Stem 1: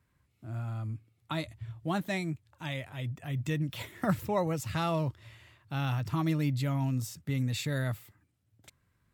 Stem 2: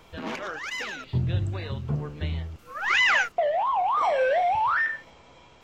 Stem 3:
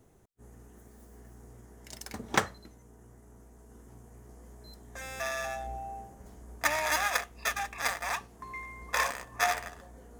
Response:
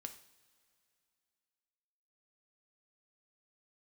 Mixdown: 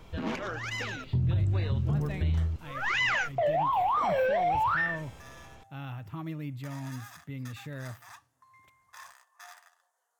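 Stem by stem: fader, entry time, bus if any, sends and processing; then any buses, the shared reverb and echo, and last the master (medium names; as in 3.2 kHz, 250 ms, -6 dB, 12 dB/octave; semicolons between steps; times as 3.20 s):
-10.5 dB, 0.00 s, send -4.5 dB, high-order bell 6.7 kHz -9.5 dB
-3.0 dB, 0.00 s, no send, bass shelf 240 Hz +11 dB
-15.0 dB, 0.00 s, no send, high-pass 850 Hz 24 dB/octave; peaking EQ 2.3 kHz -9 dB 0.38 oct; peak limiter -22 dBFS, peak gain reduction 10 dB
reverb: on, pre-delay 3 ms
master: peak limiter -20.5 dBFS, peak gain reduction 10 dB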